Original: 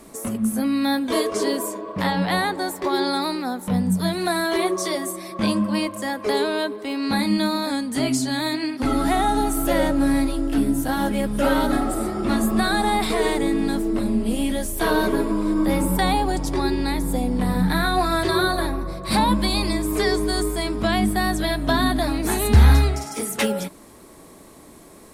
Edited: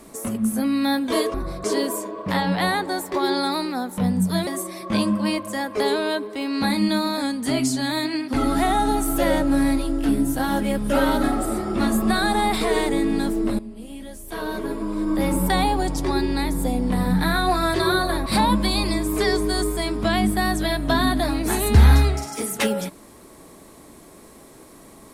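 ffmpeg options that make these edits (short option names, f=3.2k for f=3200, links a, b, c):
-filter_complex "[0:a]asplit=6[a][b][c][d][e][f];[a]atrim=end=1.342[g];[b]atrim=start=18.748:end=19.052[h];[c]atrim=start=1.338:end=4.172[i];[d]atrim=start=4.958:end=14.08,asetpts=PTS-STARTPTS,afade=t=out:st=9.118:d=0.004:c=hsin:silence=0.16788[j];[e]atrim=start=14.08:end=18.752,asetpts=PTS-STARTPTS,afade=t=in:d=1.79:c=qua:silence=0.16788[k];[f]atrim=start=19.048[l];[g][h]acrossfade=d=0.004:c1=hsin:c2=hsin[m];[m][i]acrossfade=d=0.004:c1=hsin:c2=hsin[n];[j][k]concat=n=2:v=0:a=1[o];[n][o]acrossfade=d=0.004:c1=hsin:c2=hsin[p];[p][l]acrossfade=d=0.004:c1=hsin:c2=hsin"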